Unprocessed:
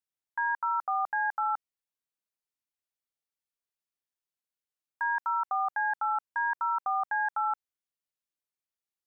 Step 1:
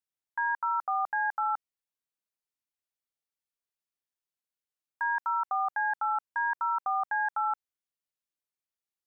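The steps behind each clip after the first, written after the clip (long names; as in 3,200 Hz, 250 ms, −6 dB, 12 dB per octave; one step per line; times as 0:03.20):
no processing that can be heard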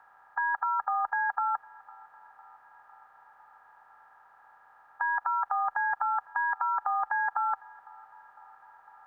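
compressor on every frequency bin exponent 0.4
feedback echo with a band-pass in the loop 504 ms, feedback 72%, band-pass 900 Hz, level −24 dB
frequency shifter +16 Hz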